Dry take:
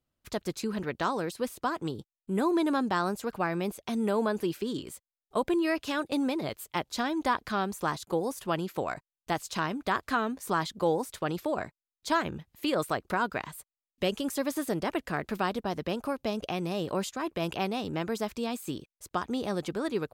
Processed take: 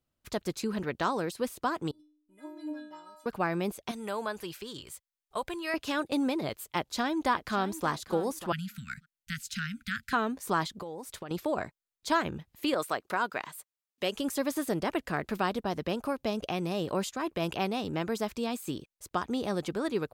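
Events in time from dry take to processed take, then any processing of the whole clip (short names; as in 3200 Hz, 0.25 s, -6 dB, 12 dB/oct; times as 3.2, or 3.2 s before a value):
1.91–3.26 metallic resonator 300 Hz, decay 0.72 s, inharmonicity 0.008
3.91–5.74 bell 270 Hz -13.5 dB 1.9 oct
6.76–7.87 echo throw 0.59 s, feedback 20%, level -14 dB
8.52–10.13 Chebyshev band-stop 230–1400 Hz, order 5
10.67–11.31 compressor 12:1, threshold -36 dBFS
12.74–14.15 HPF 450 Hz 6 dB/oct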